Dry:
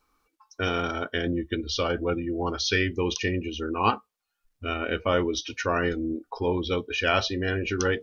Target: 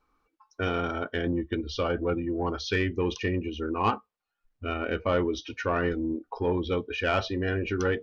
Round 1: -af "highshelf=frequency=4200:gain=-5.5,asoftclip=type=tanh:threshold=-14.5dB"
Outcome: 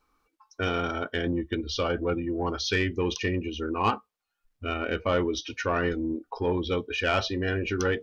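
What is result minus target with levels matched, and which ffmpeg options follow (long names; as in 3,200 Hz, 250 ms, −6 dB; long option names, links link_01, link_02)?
8,000 Hz band +6.0 dB
-af "highshelf=frequency=4200:gain=-16,asoftclip=type=tanh:threshold=-14.5dB"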